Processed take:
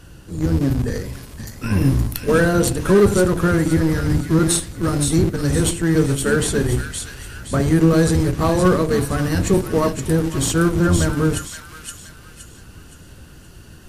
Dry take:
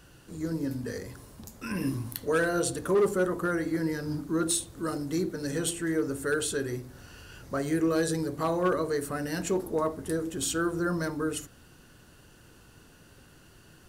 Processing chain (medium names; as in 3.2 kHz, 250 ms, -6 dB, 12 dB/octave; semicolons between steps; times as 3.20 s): octave divider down 1 oct, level -1 dB; bass shelf 240 Hz +6 dB; in parallel at -9 dB: Schmitt trigger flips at -25 dBFS; on the sum: feedback echo behind a high-pass 519 ms, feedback 39%, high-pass 1.9 kHz, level -4 dB; trim +7.5 dB; MP3 56 kbps 32 kHz